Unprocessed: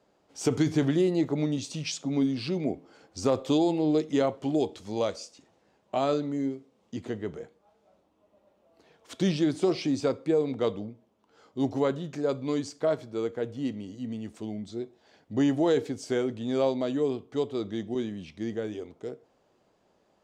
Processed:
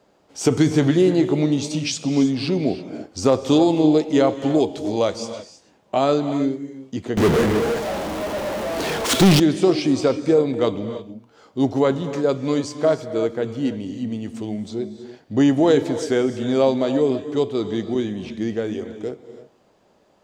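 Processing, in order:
reverb whose tail is shaped and stops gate 350 ms rising, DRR 10.5 dB
0:07.17–0:09.40: power curve on the samples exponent 0.35
level +8 dB

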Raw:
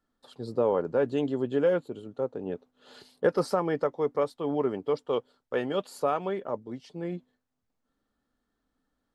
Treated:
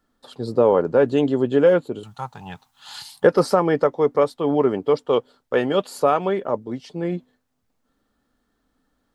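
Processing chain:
0:02.03–0:03.24: drawn EQ curve 150 Hz 0 dB, 300 Hz −23 dB, 520 Hz −23 dB, 830 Hz +7 dB, 1,400 Hz +2 dB, 10,000 Hz +13 dB
level +9 dB

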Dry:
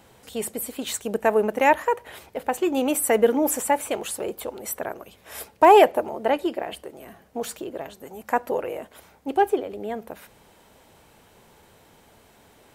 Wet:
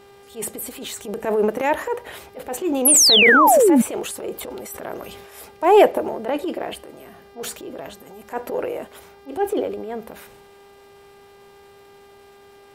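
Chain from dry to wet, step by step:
dynamic equaliser 410 Hz, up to +5 dB, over −34 dBFS, Q 1.4
transient designer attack −10 dB, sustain +6 dB
hum with harmonics 400 Hz, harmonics 14, −48 dBFS −7 dB per octave
0:02.85–0:03.82: sound drawn into the spectrogram fall 210–12,000 Hz −12 dBFS
0:04.32–0:05.37: level that may fall only so fast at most 37 dB per second
level −1 dB

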